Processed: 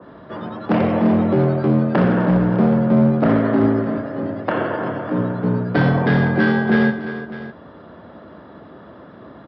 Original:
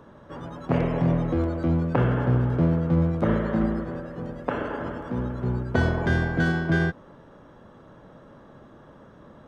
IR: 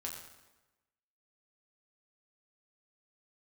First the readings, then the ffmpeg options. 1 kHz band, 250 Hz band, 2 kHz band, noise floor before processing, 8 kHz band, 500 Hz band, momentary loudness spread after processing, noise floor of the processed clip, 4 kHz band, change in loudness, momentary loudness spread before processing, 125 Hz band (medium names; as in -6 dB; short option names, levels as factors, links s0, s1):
+8.0 dB, +9.0 dB, +6.0 dB, -50 dBFS, no reading, +8.5 dB, 14 LU, -42 dBFS, +6.0 dB, +7.0 dB, 12 LU, +3.5 dB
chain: -af "aresample=11025,asoftclip=type=hard:threshold=0.119,aresample=44100,afreqshift=56,aecho=1:1:87|348|604:0.266|0.224|0.158,adynamicequalizer=threshold=0.00562:dfrequency=2200:dqfactor=0.7:tfrequency=2200:tqfactor=0.7:attack=5:release=100:ratio=0.375:range=2:mode=cutabove:tftype=highshelf,volume=2.37"